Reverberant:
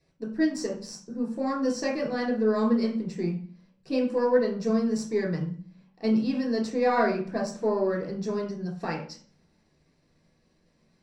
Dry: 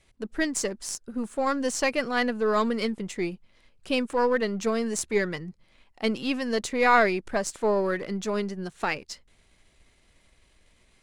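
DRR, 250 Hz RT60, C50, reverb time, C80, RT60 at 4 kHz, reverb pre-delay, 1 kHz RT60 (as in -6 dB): -3.0 dB, 0.80 s, 6.5 dB, 0.45 s, 11.0 dB, 0.40 s, 3 ms, 0.40 s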